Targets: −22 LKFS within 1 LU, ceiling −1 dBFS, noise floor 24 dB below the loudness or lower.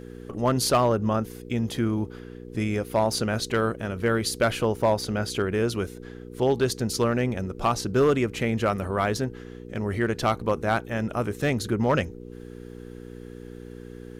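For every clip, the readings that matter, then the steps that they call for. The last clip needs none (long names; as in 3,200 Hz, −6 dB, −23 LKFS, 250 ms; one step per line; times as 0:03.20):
share of clipped samples 0.5%; peaks flattened at −14.0 dBFS; mains hum 60 Hz; hum harmonics up to 480 Hz; level of the hum −39 dBFS; integrated loudness −25.5 LKFS; sample peak −14.0 dBFS; target loudness −22.0 LKFS
→ clipped peaks rebuilt −14 dBFS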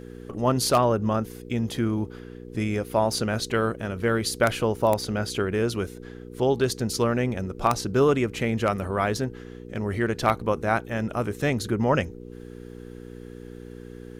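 share of clipped samples 0.0%; mains hum 60 Hz; hum harmonics up to 480 Hz; level of the hum −39 dBFS
→ hum removal 60 Hz, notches 8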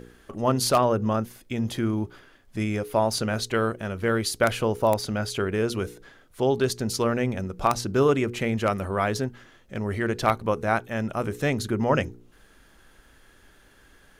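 mains hum none found; integrated loudness −25.5 LKFS; sample peak −5.0 dBFS; target loudness −22.0 LKFS
→ level +3.5 dB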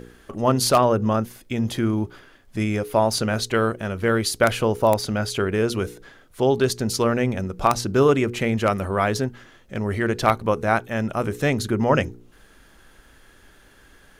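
integrated loudness −22.0 LKFS; sample peak −1.5 dBFS; background noise floor −53 dBFS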